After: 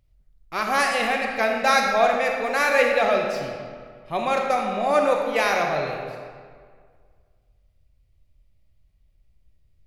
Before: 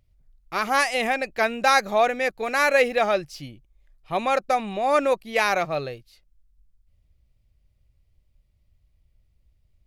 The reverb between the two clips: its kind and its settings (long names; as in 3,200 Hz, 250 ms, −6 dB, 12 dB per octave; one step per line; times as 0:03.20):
comb and all-pass reverb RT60 1.9 s, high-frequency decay 0.7×, pre-delay 0 ms, DRR 1 dB
level −1.5 dB